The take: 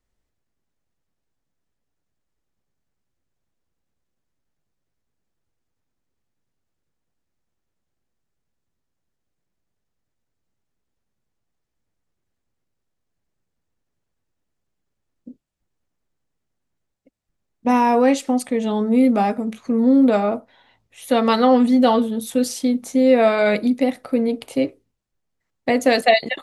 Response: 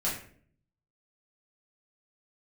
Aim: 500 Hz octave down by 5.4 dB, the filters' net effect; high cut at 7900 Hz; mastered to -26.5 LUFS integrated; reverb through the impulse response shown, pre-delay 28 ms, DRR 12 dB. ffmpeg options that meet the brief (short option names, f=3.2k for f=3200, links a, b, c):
-filter_complex "[0:a]lowpass=7.9k,equalizer=f=500:t=o:g=-6.5,asplit=2[a][b];[1:a]atrim=start_sample=2205,adelay=28[c];[b][c]afir=irnorm=-1:irlink=0,volume=-19dB[d];[a][d]amix=inputs=2:normalize=0,volume=-6.5dB"